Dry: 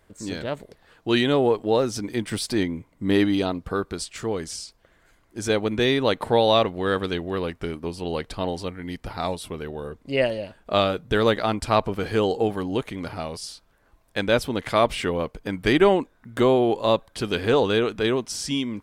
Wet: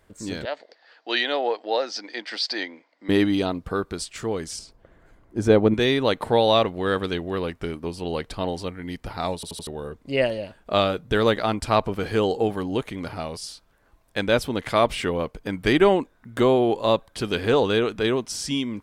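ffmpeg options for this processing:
-filter_complex "[0:a]asettb=1/sr,asplit=3[s0][s1][s2];[s0]atrim=end=0.454[s3];[s1]atrim=start=0.45:end=3.09,asetpts=PTS-STARTPTS,afade=t=in:d=0.004:c=qsin,afade=t=out:st=2.636:d=0.004:c=qsin,highpass=f=380:w=0.5412,highpass=f=380:w=1.3066,equalizer=f=400:t=q:w=4:g=-10,equalizer=f=740:t=q:w=4:g=3,equalizer=f=1100:t=q:w=4:g=-5,equalizer=f=1800:t=q:w=4:g=5,equalizer=f=4700:t=q:w=4:g=10,lowpass=f=5400:w=0.5412,lowpass=f=5400:w=1.3066[s4];[s2]atrim=start=3.086[s5];[s3][s4]acrossfade=d=0.004:c1=hsin:c2=qsin[s6];[s6][s5]acrossfade=d=0.004:c1=qsin:c2=hsin,asettb=1/sr,asplit=3[s7][s8][s9];[s7]atrim=end=4.594[s10];[s8]atrim=start=4.59:end=5.74,asetpts=PTS-STARTPTS,afade=t=in:d=0.004:c=qsin,afade=t=out:st=1.146:d=0.004:c=qsin,tiltshelf=f=1500:g=8[s11];[s9]atrim=start=5.736[s12];[s10][s11]acrossfade=d=0.004:c1=hsin:c2=qsin[s13];[s13][s12]acrossfade=d=0.004:c1=qsin:c2=hsin,asplit=5[s14][s15][s16][s17][s18];[s14]atrim=end=9.432[s19];[s15]atrim=start=9.348:end=9.432[s20];[s16]atrim=start=9.348:end=9.432[s21];[s17]atrim=start=9.348:end=9.432[s22];[s18]atrim=start=9.668[s23];[s19][s20]acrossfade=d=0.004:c1=hsin:c2=hsin[s24];[s24][s21]acrossfade=d=0.004:c1=hsin:c2=hsin[s25];[s25][s22]acrossfade=d=0.004:c1=hsin:c2=hsin[s26];[s26][s23]acrossfade=d=0.004:c1=hsin:c2=hsin"

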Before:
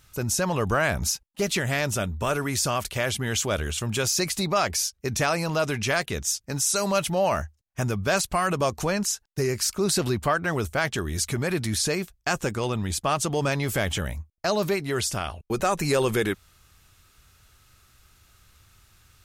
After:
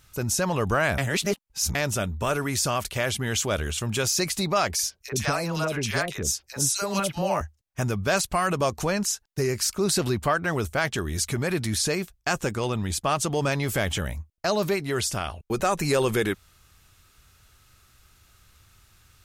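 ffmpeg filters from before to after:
-filter_complex "[0:a]asettb=1/sr,asplit=3[s0][s1][s2];[s0]atrim=end=4.754[s3];[s1]atrim=start=4.75:end=7.41,asetpts=PTS-STARTPTS,afade=t=in:d=0.004:c=qsin,afade=t=out:st=2.656:d=0.004:c=qsin,acrossover=split=630|2400[s4][s5][s6];[s5]adelay=40[s7];[s4]adelay=80[s8];[s8][s7][s6]amix=inputs=3:normalize=0,atrim=end_sample=117306[s9];[s2]atrim=start=7.406[s10];[s3][s9]acrossfade=d=0.004:c1=hsin:c2=qsin[s11];[s11][s10]acrossfade=d=0.004:c1=qsin:c2=hsin,asplit=3[s12][s13][s14];[s12]atrim=end=0.982[s15];[s13]atrim=start=0.978:end=1.752,asetpts=PTS-STARTPTS,areverse[s16];[s14]atrim=start=1.748[s17];[s15][s16]acrossfade=d=0.004:c1=hsin:c2=hsin[s18];[s18][s17]acrossfade=d=0.004:c1=hsin:c2=hsin"

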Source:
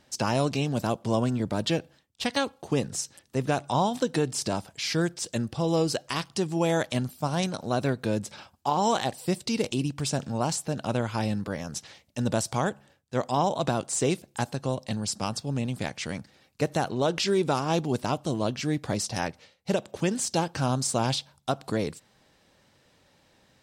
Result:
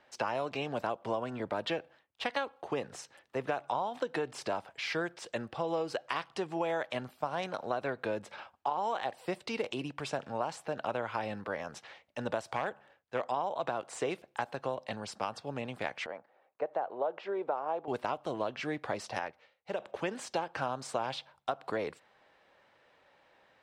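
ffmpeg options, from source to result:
-filter_complex "[0:a]asettb=1/sr,asplit=3[s0][s1][s2];[s0]atrim=end=12.534[s3];[s1]atrim=start=12.53:end=13.24,asetpts=PTS-STARTPTS,afade=t=in:d=0.004:c=qsin,afade=t=out:st=0.706:d=0.004:c=qsin,aeval=exprs='0.119*(abs(mod(val(0)/0.119+3,4)-2)-1)':c=same[s4];[s2]atrim=start=13.236[s5];[s3][s4]acrossfade=d=0.004:c1=hsin:c2=qsin[s6];[s6][s5]acrossfade=d=0.004:c1=qsin:c2=hsin,asettb=1/sr,asplit=3[s7][s8][s9];[s7]atrim=end=16.064[s10];[s8]atrim=start=16.06:end=17.88,asetpts=PTS-STARTPTS,afade=t=in:d=0.004:c=qsin,afade=t=out:st=1.816:d=0.004:c=qsin,bandpass=f=650:t=q:w=1.4[s11];[s9]atrim=start=17.876[s12];[s10][s11]acrossfade=d=0.004:c1=hsin:c2=qsin[s13];[s13][s12]acrossfade=d=0.004:c1=qsin:c2=hsin,asplit=3[s14][s15][s16];[s14]atrim=end=19.192[s17];[s15]atrim=start=19.188:end=19.802,asetpts=PTS-STARTPTS,volume=0.473[s18];[s16]atrim=start=19.798[s19];[s17][s18]acrossfade=d=0.004:c1=hsin:c2=hsin[s20];[s20][s19]acrossfade=d=0.004:c1=hsin:c2=hsin,acrossover=split=430 2900:gain=0.141 1 0.1[s21][s22][s23];[s21][s22][s23]amix=inputs=3:normalize=0,acompressor=threshold=0.0282:ratio=6,volume=1.26"

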